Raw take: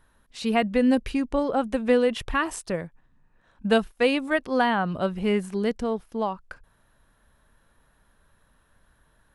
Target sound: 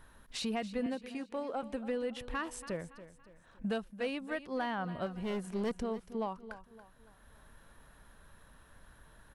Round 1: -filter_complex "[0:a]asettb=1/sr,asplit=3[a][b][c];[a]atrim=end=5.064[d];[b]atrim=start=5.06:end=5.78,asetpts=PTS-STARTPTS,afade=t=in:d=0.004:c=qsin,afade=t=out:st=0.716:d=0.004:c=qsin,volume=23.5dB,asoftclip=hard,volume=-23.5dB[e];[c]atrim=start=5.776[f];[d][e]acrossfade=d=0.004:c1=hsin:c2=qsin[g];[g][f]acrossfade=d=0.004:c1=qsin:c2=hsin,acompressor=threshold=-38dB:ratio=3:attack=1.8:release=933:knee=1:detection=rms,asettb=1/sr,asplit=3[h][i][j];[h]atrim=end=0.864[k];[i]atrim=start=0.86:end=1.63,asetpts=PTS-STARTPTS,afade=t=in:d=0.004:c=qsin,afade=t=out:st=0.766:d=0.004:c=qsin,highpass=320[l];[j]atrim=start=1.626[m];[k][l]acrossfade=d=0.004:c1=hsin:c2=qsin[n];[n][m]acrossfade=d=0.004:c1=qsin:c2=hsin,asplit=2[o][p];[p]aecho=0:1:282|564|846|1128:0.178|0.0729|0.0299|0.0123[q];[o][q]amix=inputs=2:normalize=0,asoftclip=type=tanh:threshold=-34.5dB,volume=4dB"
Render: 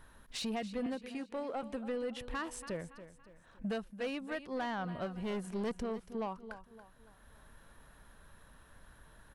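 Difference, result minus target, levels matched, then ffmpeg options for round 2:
soft clip: distortion +9 dB
-filter_complex "[0:a]asettb=1/sr,asplit=3[a][b][c];[a]atrim=end=5.064[d];[b]atrim=start=5.06:end=5.78,asetpts=PTS-STARTPTS,afade=t=in:d=0.004:c=qsin,afade=t=out:st=0.716:d=0.004:c=qsin,volume=23.5dB,asoftclip=hard,volume=-23.5dB[e];[c]atrim=start=5.776[f];[d][e]acrossfade=d=0.004:c1=hsin:c2=qsin[g];[g][f]acrossfade=d=0.004:c1=qsin:c2=hsin,acompressor=threshold=-38dB:ratio=3:attack=1.8:release=933:knee=1:detection=rms,asettb=1/sr,asplit=3[h][i][j];[h]atrim=end=0.864[k];[i]atrim=start=0.86:end=1.63,asetpts=PTS-STARTPTS,afade=t=in:d=0.004:c=qsin,afade=t=out:st=0.766:d=0.004:c=qsin,highpass=320[l];[j]atrim=start=1.626[m];[k][l]acrossfade=d=0.004:c1=hsin:c2=qsin[n];[n][m]acrossfade=d=0.004:c1=qsin:c2=hsin,asplit=2[o][p];[p]aecho=0:1:282|564|846|1128:0.178|0.0729|0.0299|0.0123[q];[o][q]amix=inputs=2:normalize=0,asoftclip=type=tanh:threshold=-28dB,volume=4dB"

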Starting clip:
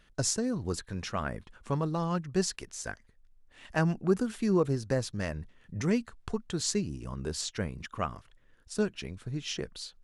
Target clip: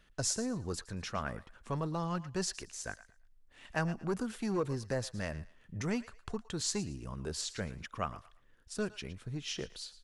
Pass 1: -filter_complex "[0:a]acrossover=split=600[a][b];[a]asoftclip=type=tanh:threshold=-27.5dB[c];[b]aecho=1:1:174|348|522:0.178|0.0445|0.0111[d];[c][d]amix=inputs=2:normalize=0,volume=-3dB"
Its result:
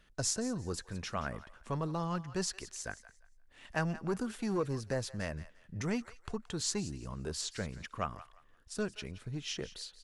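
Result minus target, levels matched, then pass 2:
echo 61 ms late
-filter_complex "[0:a]acrossover=split=600[a][b];[a]asoftclip=type=tanh:threshold=-27.5dB[c];[b]aecho=1:1:113|226|339:0.178|0.0445|0.0111[d];[c][d]amix=inputs=2:normalize=0,volume=-3dB"

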